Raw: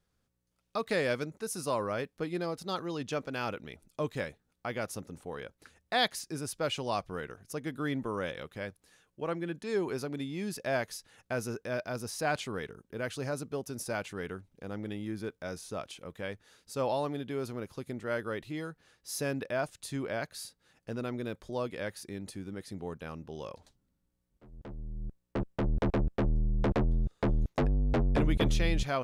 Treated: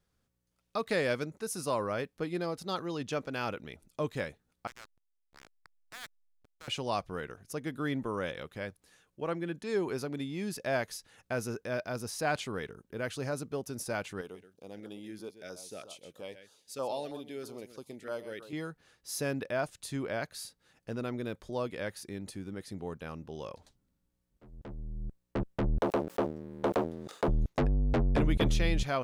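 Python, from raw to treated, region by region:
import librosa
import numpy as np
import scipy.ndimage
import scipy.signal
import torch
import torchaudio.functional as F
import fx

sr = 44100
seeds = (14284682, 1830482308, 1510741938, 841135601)

y = fx.chain(x, sr, fx.ladder_bandpass(hz=1700.0, resonance_pct=45),
    fx.backlash(play_db=-42.0),
    fx.spectral_comp(ratio=2.0), at=(4.67, 6.68))
y = fx.chain(y, sr, fx.highpass(hz=530.0, slope=6),
    fx.echo_single(ms=129, db=-11.5),
    fx.filter_lfo_notch(shape='saw_down', hz=3.1, low_hz=880.0, high_hz=2300.0, q=0.71), at=(14.21, 18.53))
y = fx.chain(y, sr, fx.highpass(hz=410.0, slope=12),
    fx.leveller(passes=2),
    fx.sustainer(db_per_s=110.0), at=(25.81, 27.28))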